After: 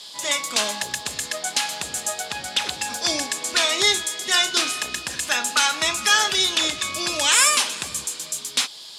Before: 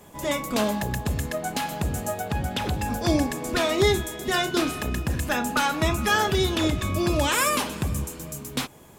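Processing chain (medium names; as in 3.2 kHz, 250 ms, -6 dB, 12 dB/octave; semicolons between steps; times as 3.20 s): frequency weighting ITU-R 468; band noise 3.1–5.2 kHz -41 dBFS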